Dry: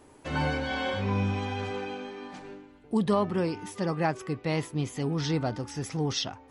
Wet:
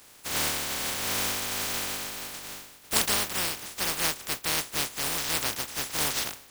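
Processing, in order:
compressing power law on the bin magnitudes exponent 0.11
speech leveller within 4 dB 0.5 s

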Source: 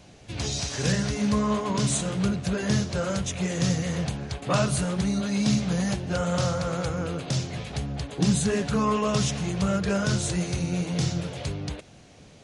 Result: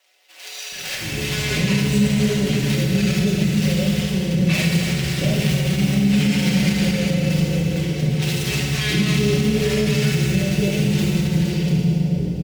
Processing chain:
running median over 41 samples
high shelf with overshoot 1,700 Hz +12 dB, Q 1.5
multiband delay without the direct sound highs, lows 720 ms, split 690 Hz
automatic gain control gain up to 7 dB
feedback delay network reverb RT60 2.7 s, low-frequency decay 1.2×, high-frequency decay 0.85×, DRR −2 dB
brickwall limiter −8.5 dBFS, peak gain reduction 7 dB
mains-hum notches 60/120/180 Hz
comb filter 5.3 ms, depth 63%
level −2.5 dB

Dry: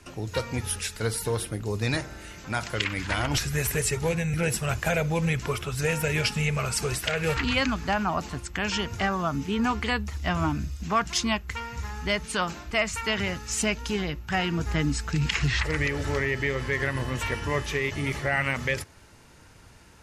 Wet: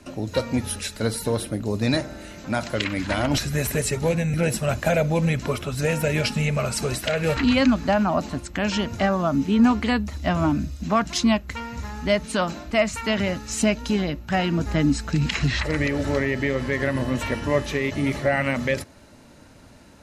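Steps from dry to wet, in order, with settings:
hollow resonant body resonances 250/580/4,000 Hz, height 11 dB, ringing for 25 ms

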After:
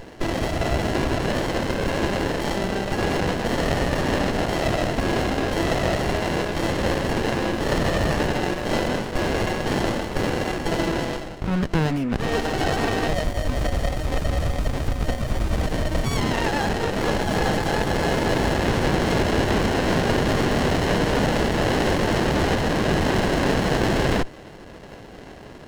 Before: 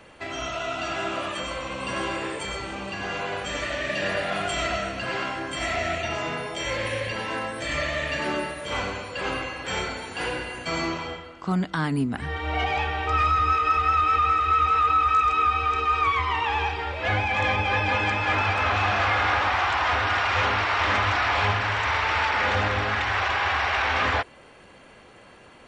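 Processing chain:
high-pass filter 170 Hz
brickwall limiter −23 dBFS, peak gain reduction 10 dB
flat-topped bell 1,800 Hz +12.5 dB
windowed peak hold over 33 samples
level +5 dB

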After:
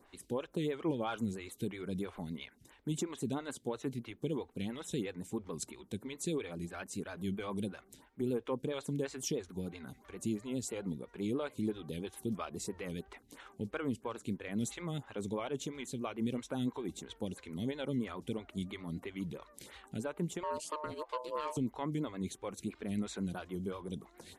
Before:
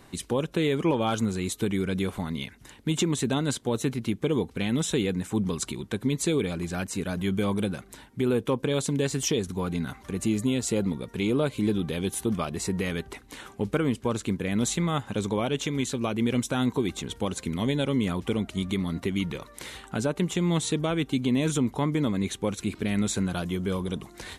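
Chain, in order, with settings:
pitch vibrato 7.5 Hz 52 cents
0:20.43–0:21.57: ring modulation 760 Hz
phaser with staggered stages 3 Hz
level −8.5 dB

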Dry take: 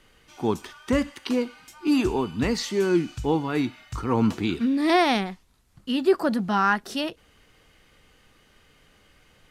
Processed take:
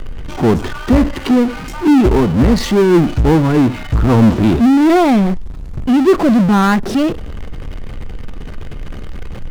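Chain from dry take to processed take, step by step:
spectral tilt −4 dB per octave
power curve on the samples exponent 0.5
mains-hum notches 50/100 Hz

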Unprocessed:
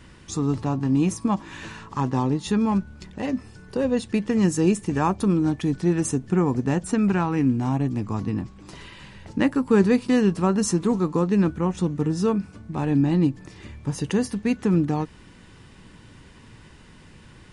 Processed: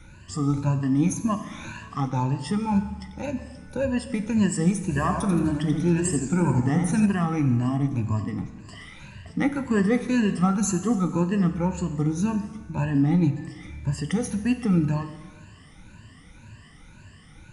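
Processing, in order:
rippled gain that drifts along the octave scale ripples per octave 1.4, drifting +1.9 Hz, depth 19 dB
graphic EQ with 15 bands 100 Hz +3 dB, 400 Hz −9 dB, 1,000 Hz −3 dB, 4,000 Hz −5 dB
dense smooth reverb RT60 1.4 s, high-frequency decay 0.95×, DRR 9 dB
0:04.82–0:07.06: feedback echo with a swinging delay time 84 ms, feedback 51%, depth 137 cents, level −6 dB
level −3.5 dB

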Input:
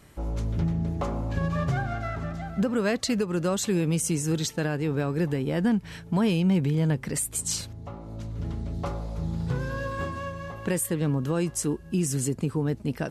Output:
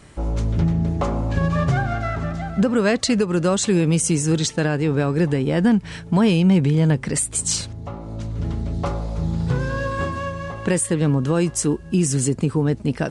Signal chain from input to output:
downsampling to 22,050 Hz
level +7 dB

